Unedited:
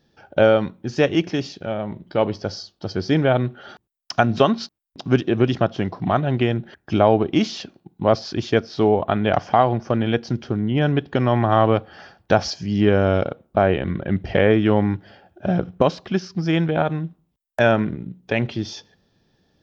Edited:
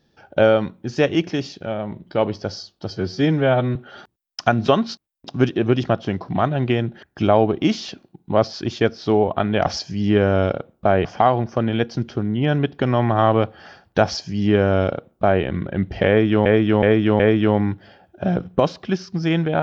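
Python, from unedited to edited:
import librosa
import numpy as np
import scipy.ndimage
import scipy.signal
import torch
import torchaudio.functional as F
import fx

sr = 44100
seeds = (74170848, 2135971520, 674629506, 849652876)

y = fx.edit(x, sr, fx.stretch_span(start_s=2.9, length_s=0.57, factor=1.5),
    fx.duplicate(start_s=12.38, length_s=1.38, to_s=9.38),
    fx.repeat(start_s=14.42, length_s=0.37, count=4), tone=tone)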